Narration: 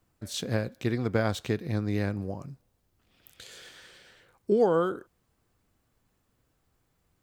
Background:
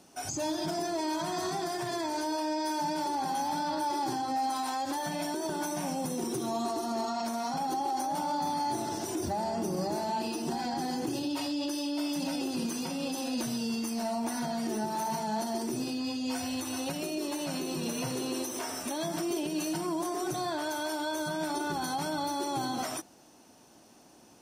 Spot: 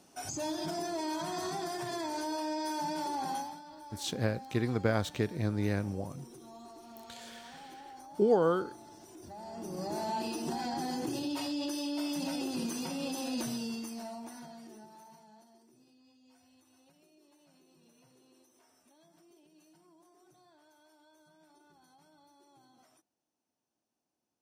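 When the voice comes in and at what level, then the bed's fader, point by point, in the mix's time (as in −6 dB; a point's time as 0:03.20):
3.70 s, −2.5 dB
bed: 0:03.36 −3.5 dB
0:03.62 −18.5 dB
0:09.16 −18.5 dB
0:10.01 −2.5 dB
0:13.48 −2.5 dB
0:15.68 −31 dB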